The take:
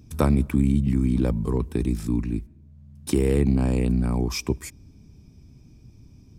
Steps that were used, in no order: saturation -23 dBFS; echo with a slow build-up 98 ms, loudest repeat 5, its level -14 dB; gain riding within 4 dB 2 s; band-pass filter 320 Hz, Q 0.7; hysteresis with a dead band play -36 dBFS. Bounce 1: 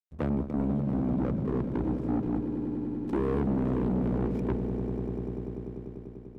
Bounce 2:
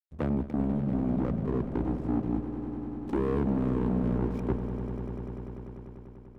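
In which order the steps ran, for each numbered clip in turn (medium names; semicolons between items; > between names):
band-pass filter > hysteresis with a dead band > gain riding > echo with a slow build-up > saturation; band-pass filter > hysteresis with a dead band > gain riding > saturation > echo with a slow build-up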